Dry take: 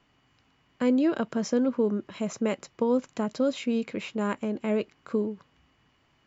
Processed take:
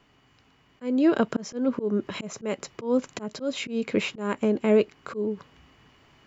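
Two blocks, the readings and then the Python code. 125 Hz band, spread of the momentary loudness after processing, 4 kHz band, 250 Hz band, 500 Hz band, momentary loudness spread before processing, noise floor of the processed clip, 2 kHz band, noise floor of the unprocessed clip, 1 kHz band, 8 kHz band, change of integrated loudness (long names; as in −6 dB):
+2.0 dB, 11 LU, +4.5 dB, +0.5 dB, +2.0 dB, 7 LU, −62 dBFS, +4.0 dB, −67 dBFS, +0.5 dB, can't be measured, +1.5 dB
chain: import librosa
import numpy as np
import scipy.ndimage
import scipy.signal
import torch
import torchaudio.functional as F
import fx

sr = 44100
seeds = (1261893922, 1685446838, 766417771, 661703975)

p1 = fx.peak_eq(x, sr, hz=420.0, db=4.5, octaves=0.21)
p2 = fx.auto_swell(p1, sr, attack_ms=295.0)
p3 = fx.rider(p2, sr, range_db=4, speed_s=0.5)
y = p2 + F.gain(torch.from_numpy(p3), 1.0).numpy()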